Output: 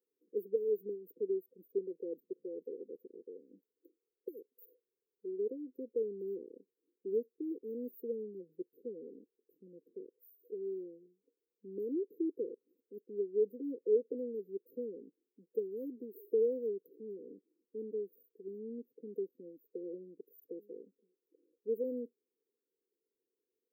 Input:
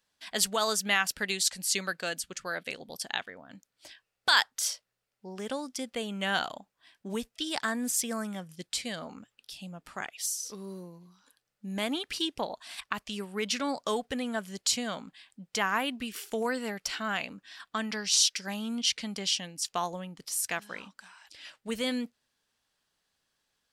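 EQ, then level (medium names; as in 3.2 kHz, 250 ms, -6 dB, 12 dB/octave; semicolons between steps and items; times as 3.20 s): ladder high-pass 340 Hz, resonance 60%; brick-wall FIR band-stop 520–14000 Hz; +6.5 dB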